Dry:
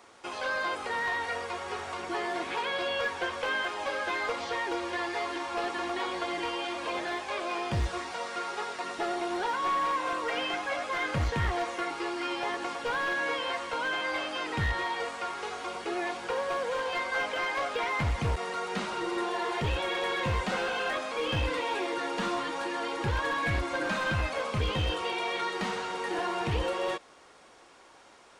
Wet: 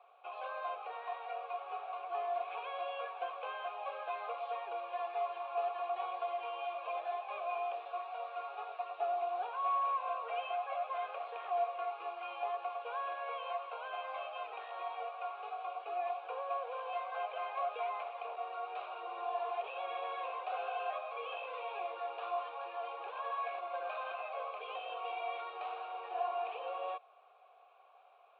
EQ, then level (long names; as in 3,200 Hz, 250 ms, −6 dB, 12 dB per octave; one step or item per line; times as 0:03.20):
formant filter a
Chebyshev band-pass filter 420–3,900 Hz, order 4
+2.0 dB